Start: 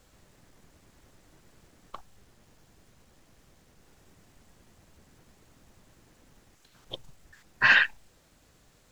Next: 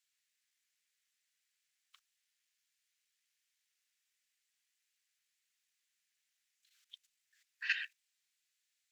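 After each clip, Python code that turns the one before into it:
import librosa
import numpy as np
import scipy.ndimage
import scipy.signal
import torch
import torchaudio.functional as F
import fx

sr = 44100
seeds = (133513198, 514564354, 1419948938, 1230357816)

y = scipy.signal.sosfilt(scipy.signal.cheby2(4, 50, 740.0, 'highpass', fs=sr, output='sos'), x)
y = fx.level_steps(y, sr, step_db=11)
y = F.gain(torch.from_numpy(y), -7.5).numpy()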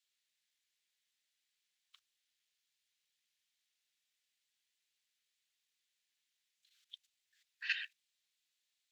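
y = fx.peak_eq(x, sr, hz=3600.0, db=7.0, octaves=0.87)
y = F.gain(torch.from_numpy(y), -4.5).numpy()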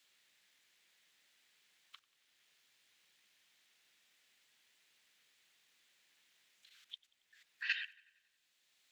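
y = fx.echo_wet_lowpass(x, sr, ms=92, feedback_pct=50, hz=3500.0, wet_db=-22)
y = fx.band_squash(y, sr, depth_pct=40)
y = F.gain(torch.from_numpy(y), 6.0).numpy()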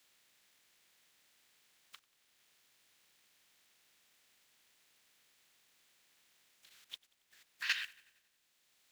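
y = fx.spec_flatten(x, sr, power=0.55)
y = F.gain(torch.from_numpy(y), 2.0).numpy()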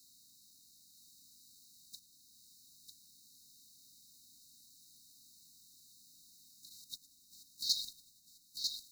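y = fx.brickwall_bandstop(x, sr, low_hz=310.0, high_hz=3700.0)
y = y + 10.0 ** (-4.5 / 20.0) * np.pad(y, (int(947 * sr / 1000.0), 0))[:len(y)]
y = F.gain(torch.from_numpy(y), 10.0).numpy()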